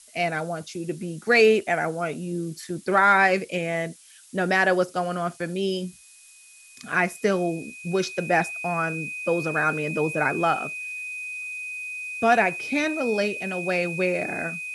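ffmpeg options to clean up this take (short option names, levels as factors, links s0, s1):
-af "bandreject=f=2500:w=30,afftdn=nr=19:nf=-50"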